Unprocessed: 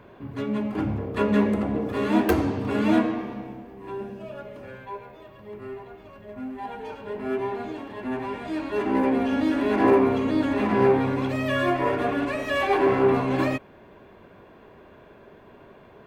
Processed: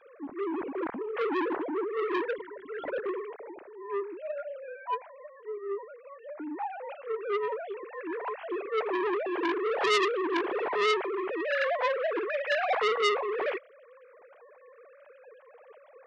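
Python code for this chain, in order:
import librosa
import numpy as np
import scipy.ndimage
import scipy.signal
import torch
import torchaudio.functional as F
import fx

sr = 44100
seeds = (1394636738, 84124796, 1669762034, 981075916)

y = fx.sine_speech(x, sr)
y = fx.fixed_phaser(y, sr, hz=1700.0, stages=8, at=(2.25, 3.06))
y = fx.transformer_sat(y, sr, knee_hz=2900.0)
y = y * 10.0 ** (-2.5 / 20.0)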